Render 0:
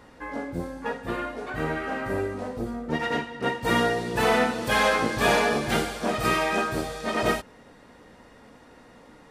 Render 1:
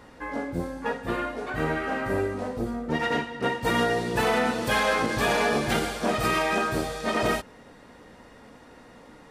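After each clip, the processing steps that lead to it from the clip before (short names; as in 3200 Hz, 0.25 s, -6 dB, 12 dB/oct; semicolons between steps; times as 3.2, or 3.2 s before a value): limiter -16 dBFS, peak gain reduction 6 dB; gain +1.5 dB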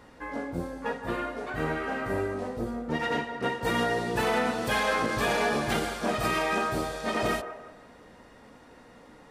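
band-limited delay 0.171 s, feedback 36%, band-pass 820 Hz, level -9 dB; gain -3 dB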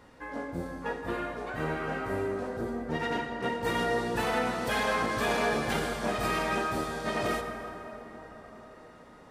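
plate-style reverb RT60 4.9 s, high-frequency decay 0.4×, pre-delay 0 ms, DRR 5.5 dB; gain -3 dB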